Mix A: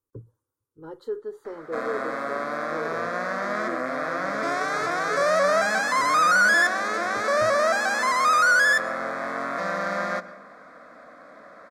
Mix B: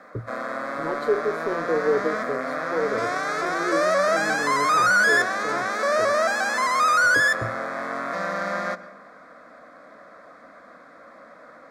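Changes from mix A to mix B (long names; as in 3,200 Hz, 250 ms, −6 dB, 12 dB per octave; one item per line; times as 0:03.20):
speech +8.5 dB
background: entry −1.45 s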